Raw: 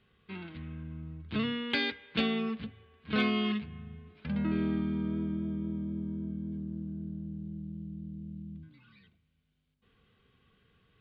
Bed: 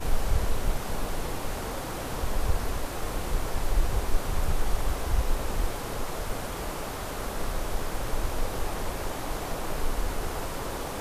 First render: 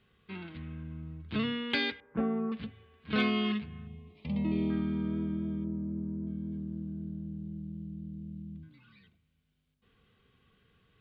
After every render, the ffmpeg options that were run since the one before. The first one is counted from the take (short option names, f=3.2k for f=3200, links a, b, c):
-filter_complex "[0:a]asettb=1/sr,asplit=3[a][b][c];[a]atrim=end=2.004[d];[b]atrim=start=2:end=2.52,asetpts=PTS-STARTPTS,afade=t=in:d=0.004:c=qsin,afade=t=out:st=0.516:d=0.004:c=qsin,lowpass=f=1.3k:w=0.5412,lowpass=f=1.3k:w=1.3066[e];[c]atrim=start=2.516[f];[d][e]acrossfade=d=0.004:c1=hsin:c2=qsin[g];[g][f]acrossfade=d=0.004:c1=qsin:c2=hsin,asettb=1/sr,asplit=3[h][i][j];[h]atrim=end=3.874[k];[i]atrim=start=3.87:end=4.7,asetpts=PTS-STARTPTS,afade=t=in:d=0.004:c=qsin,afade=t=out:st=0.826:d=0.004:c=qsin,asuperstop=centerf=1500:order=4:qfactor=1.5[l];[j]atrim=start=4.696[m];[k][l]acrossfade=d=0.004:c1=hsin:c2=qsin[n];[n][m]acrossfade=d=0.004:c1=qsin:c2=hsin,asettb=1/sr,asplit=3[o][p][q];[o]atrim=end=5.644[r];[p]atrim=start=5.64:end=6.27,asetpts=PTS-STARTPTS,afade=t=in:d=0.004:c=qsin,afade=t=out:st=0.626:d=0.004:c=qsin,lowpass=1.1k[s];[q]atrim=start=6.266[t];[r][s]acrossfade=d=0.004:c1=hsin:c2=qsin[u];[u][t]acrossfade=d=0.004:c1=qsin:c2=hsin"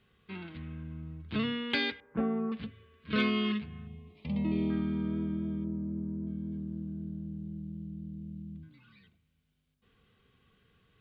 -filter_complex "[0:a]asettb=1/sr,asplit=3[a][b][c];[a]atrim=end=2.664[d];[b]atrim=start=2.66:end=3.61,asetpts=PTS-STARTPTS,afade=t=in:d=0.004:c=qsin,afade=t=out:st=0.946:d=0.004:c=qsin,asuperstop=centerf=800:order=4:qfactor=3[e];[c]atrim=start=3.606[f];[d][e]acrossfade=d=0.004:c1=hsin:c2=qsin[g];[g][f]acrossfade=d=0.004:c1=qsin:c2=hsin"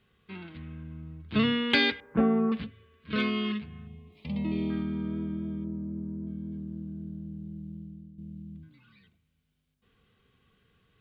-filter_complex "[0:a]asplit=3[a][b][c];[a]afade=t=out:st=1.35:d=0.02[d];[b]acontrast=80,afade=t=in:st=1.35:d=0.02,afade=t=out:st=2.62:d=0.02[e];[c]afade=t=in:st=2.62:d=0.02[f];[d][e][f]amix=inputs=3:normalize=0,asettb=1/sr,asplit=3[g][h][i];[g]atrim=end=4.124[j];[h]atrim=start=4.12:end=4.83,asetpts=PTS-STARTPTS,afade=t=in:d=0.004:c=qsin,afade=t=out:st=0.706:d=0.004:c=qsin,highshelf=f=3.2k:g=6.5[k];[i]atrim=start=4.826[l];[j][k]acrossfade=d=0.004:c1=hsin:c2=qsin[m];[m][l]acrossfade=d=0.004:c1=qsin:c2=hsin,asplit=2[n][o];[n]atrim=end=8.18,asetpts=PTS-STARTPTS,afade=t=out:st=7.75:d=0.43:silence=0.298538[p];[o]atrim=start=8.18,asetpts=PTS-STARTPTS,afade=t=in:d=0.004:c=hsin:silence=0.298538[q];[p][q]concat=n=2:v=0:a=1"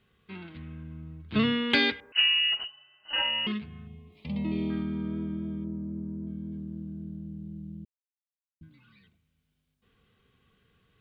-filter_complex "[0:a]asettb=1/sr,asplit=3[a][b][c];[a]atrim=end=2.124[d];[b]atrim=start=2.12:end=3.47,asetpts=PTS-STARTPTS,afade=t=in:d=0.004:c=qsin,afade=t=out:st=1.346:d=0.004:c=qsin,lowpass=f=2.6k:t=q:w=0.5098,lowpass=f=2.6k:t=q:w=0.6013,lowpass=f=2.6k:t=q:w=0.9,lowpass=f=2.6k:t=q:w=2.563,afreqshift=-3100[e];[c]atrim=start=3.466[f];[d][e]acrossfade=d=0.004:c1=hsin:c2=qsin[g];[g][f]acrossfade=d=0.004:c1=qsin:c2=hsin,asplit=3[h][i][j];[h]atrim=end=7.85,asetpts=PTS-STARTPTS,afade=t=out:st=7.846:d=0.004:c=hsin[k];[i]atrim=start=7.85:end=8.61,asetpts=PTS-STARTPTS,volume=0[l];[j]atrim=start=8.61,asetpts=PTS-STARTPTS,afade=t=in:d=0.004:c=hsin[m];[k][l][m]concat=n=3:v=0:a=1"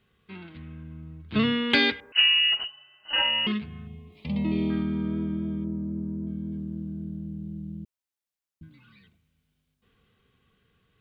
-af "dynaudnorm=f=200:g=17:m=4dB"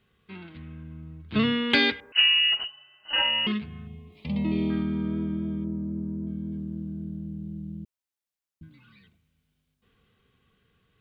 -af anull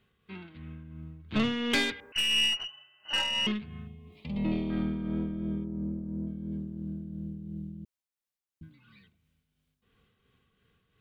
-af "aeval=exprs='(tanh(10*val(0)+0.35)-tanh(0.35))/10':c=same,tremolo=f=2.9:d=0.42"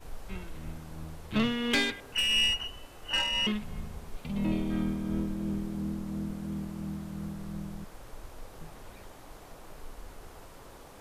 -filter_complex "[1:a]volume=-16.5dB[a];[0:a][a]amix=inputs=2:normalize=0"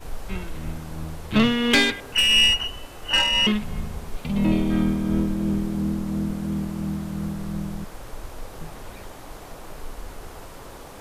-af "volume=9dB"